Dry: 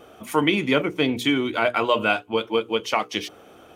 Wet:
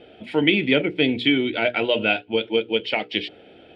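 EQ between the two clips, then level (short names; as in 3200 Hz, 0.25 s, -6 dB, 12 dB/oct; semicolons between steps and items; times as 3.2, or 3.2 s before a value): LPF 5400 Hz 24 dB/oct; low shelf 170 Hz -5.5 dB; fixed phaser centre 2700 Hz, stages 4; +4.0 dB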